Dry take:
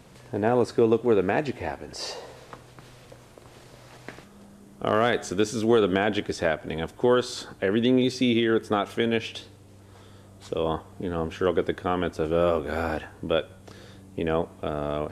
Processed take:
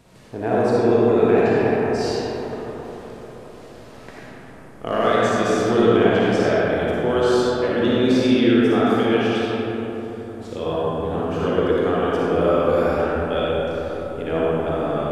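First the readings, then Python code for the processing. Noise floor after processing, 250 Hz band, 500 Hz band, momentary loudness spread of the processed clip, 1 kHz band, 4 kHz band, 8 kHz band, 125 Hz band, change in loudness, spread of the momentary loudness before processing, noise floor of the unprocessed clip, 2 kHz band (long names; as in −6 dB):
−41 dBFS, +6.5 dB, +6.5 dB, 15 LU, +6.5 dB, +3.0 dB, +1.5 dB, +6.5 dB, +6.0 dB, 12 LU, −51 dBFS, +5.0 dB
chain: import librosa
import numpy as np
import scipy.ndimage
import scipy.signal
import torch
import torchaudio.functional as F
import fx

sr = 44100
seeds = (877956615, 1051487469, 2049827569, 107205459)

y = fx.rev_freeverb(x, sr, rt60_s=4.3, hf_ratio=0.35, predelay_ms=15, drr_db=-8.0)
y = y * librosa.db_to_amplitude(-3.0)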